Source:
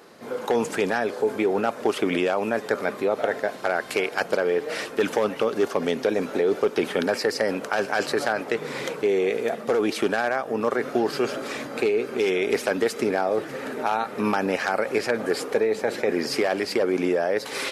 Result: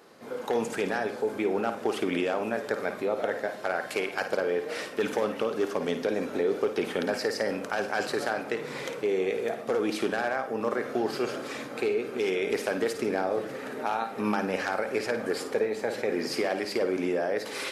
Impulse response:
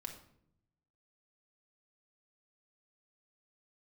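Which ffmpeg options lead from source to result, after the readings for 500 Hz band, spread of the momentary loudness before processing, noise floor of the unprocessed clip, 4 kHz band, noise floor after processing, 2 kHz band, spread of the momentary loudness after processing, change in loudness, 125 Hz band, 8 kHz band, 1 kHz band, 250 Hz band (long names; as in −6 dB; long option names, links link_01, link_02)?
−5.0 dB, 4 LU, −37 dBFS, −5.0 dB, −40 dBFS, −5.0 dB, 3 LU, −5.0 dB, −4.5 dB, −5.0 dB, −4.5 dB, −4.5 dB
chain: -filter_complex "[0:a]asplit=2[link_01][link_02];[1:a]atrim=start_sample=2205,adelay=53[link_03];[link_02][link_03]afir=irnorm=-1:irlink=0,volume=-5dB[link_04];[link_01][link_04]amix=inputs=2:normalize=0,volume=-5.5dB"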